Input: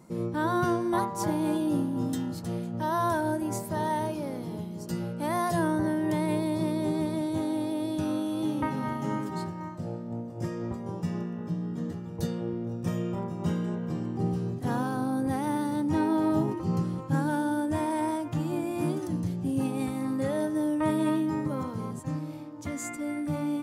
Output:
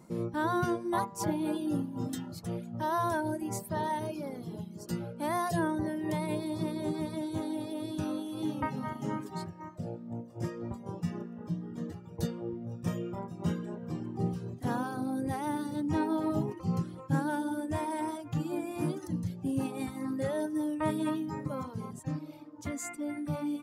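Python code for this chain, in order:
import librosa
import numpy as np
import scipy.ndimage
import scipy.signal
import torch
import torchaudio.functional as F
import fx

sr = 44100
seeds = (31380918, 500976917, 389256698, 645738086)

y = fx.dereverb_blind(x, sr, rt60_s=1.2)
y = y * 10.0 ** (-1.5 / 20.0)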